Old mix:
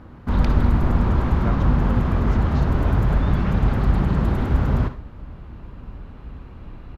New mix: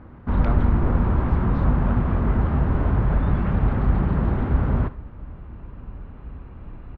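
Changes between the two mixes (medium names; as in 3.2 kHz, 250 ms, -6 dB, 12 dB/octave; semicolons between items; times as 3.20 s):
speech: entry -1.00 s; first sound: send -6.5 dB; master: add low-pass 2.2 kHz 12 dB/octave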